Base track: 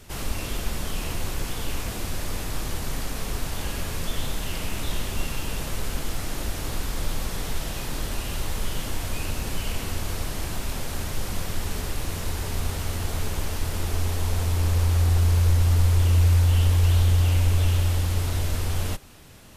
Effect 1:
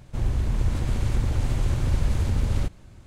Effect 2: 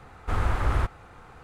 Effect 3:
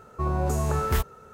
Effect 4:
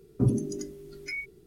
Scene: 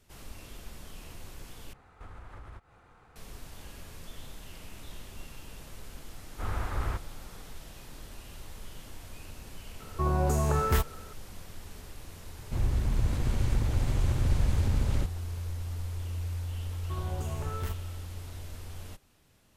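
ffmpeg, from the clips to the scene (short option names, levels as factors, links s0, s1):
-filter_complex "[2:a]asplit=2[s0][s1];[3:a]asplit=2[s2][s3];[0:a]volume=0.15[s4];[s0]acompressor=threshold=0.0282:ratio=8:attack=2.7:release=153:knee=1:detection=rms[s5];[s1]dynaudnorm=f=180:g=3:m=3.76[s6];[s3]asoftclip=type=tanh:threshold=0.106[s7];[s4]asplit=2[s8][s9];[s8]atrim=end=1.734[s10];[s5]atrim=end=1.43,asetpts=PTS-STARTPTS,volume=0.316[s11];[s9]atrim=start=3.156[s12];[s6]atrim=end=1.43,asetpts=PTS-STARTPTS,volume=0.141,afade=t=in:d=0.004:c=hsin,afade=t=out:st=1.426:d=0.004:c=hsin,adelay=6110[s13];[s2]atrim=end=1.33,asetpts=PTS-STARTPTS,volume=0.891,afade=t=in:d=0.004:c=hsin,afade=t=out:st=1.326:d=0.004:c=hsin,adelay=9800[s14];[1:a]atrim=end=3.06,asetpts=PTS-STARTPTS,volume=0.668,afade=t=in:d=0.004:c=hsin,afade=t=out:st=3.056:d=0.004:c=hsin,adelay=12380[s15];[s7]atrim=end=1.33,asetpts=PTS-STARTPTS,volume=0.299,afade=t=in:d=0.004:c=hsin,afade=t=out:st=1.326:d=0.004:c=hsin,adelay=16710[s16];[s10][s11]acrossfade=d=0.004:c1=hsin:c2=hsin[s17];[s17][s12]acrossfade=d=0.004:c1=hsin:c2=hsin[s18];[s18][s13][s14][s15][s16]amix=inputs=5:normalize=0"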